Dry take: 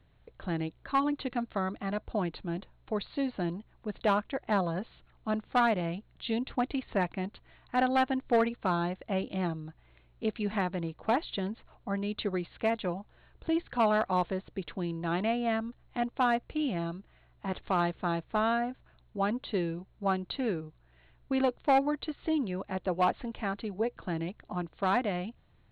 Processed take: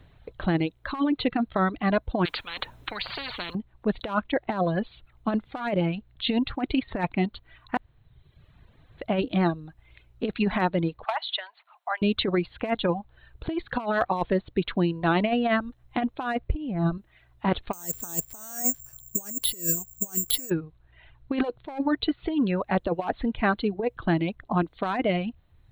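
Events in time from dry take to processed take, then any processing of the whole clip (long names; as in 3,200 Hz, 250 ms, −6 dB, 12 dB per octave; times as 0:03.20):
0:02.25–0:03.55: every bin compressed towards the loudest bin 10 to 1
0:07.77–0:08.98: fill with room tone
0:11.04–0:12.02: elliptic high-pass filter 710 Hz, stop band 80 dB
0:16.49–0:16.98: spectral tilt −3 dB per octave
0:17.73–0:20.50: bad sample-rate conversion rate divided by 6×, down none, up zero stuff
0:23.31–0:24.59: one half of a high-frequency compander decoder only
whole clip: reverb reduction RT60 1 s; compressor whose output falls as the input rises −31 dBFS, ratio −0.5; level +7 dB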